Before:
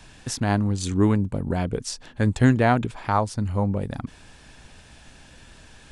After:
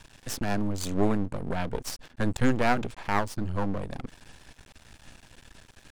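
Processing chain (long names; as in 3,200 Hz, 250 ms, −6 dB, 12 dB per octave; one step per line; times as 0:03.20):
half-wave rectification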